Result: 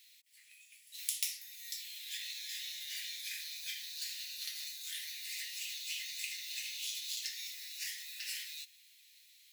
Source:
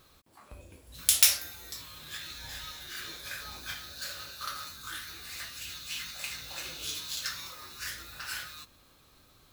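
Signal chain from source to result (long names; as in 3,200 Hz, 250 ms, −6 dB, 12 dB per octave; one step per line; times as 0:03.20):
Chebyshev high-pass filter 1,900 Hz, order 6
downward compressor 3 to 1, threshold −41 dBFS, peak gain reduction 18.5 dB
level +2.5 dB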